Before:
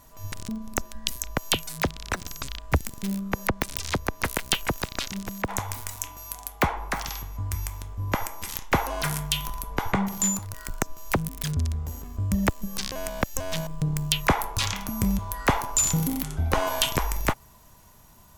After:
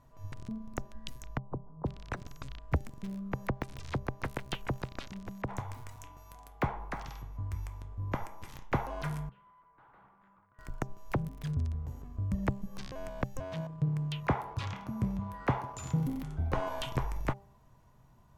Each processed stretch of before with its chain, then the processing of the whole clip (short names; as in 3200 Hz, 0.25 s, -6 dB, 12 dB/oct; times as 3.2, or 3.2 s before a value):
1.37–1.86 G.711 law mismatch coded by A + steep low-pass 1100 Hz 48 dB/oct + bell 690 Hz -4.5 dB 0.64 oct
9.29–10.59 band-pass 1400 Hz, Q 2.4 + tube stage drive 46 dB, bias 0.45 + air absorption 470 m
13.4–16.06 G.711 law mismatch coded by mu + HPF 59 Hz 24 dB/oct + high shelf 5200 Hz -7.5 dB
whole clip: LPF 1200 Hz 6 dB/oct; bell 130 Hz +10.5 dB 0.2 oct; de-hum 198.5 Hz, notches 4; gain -7 dB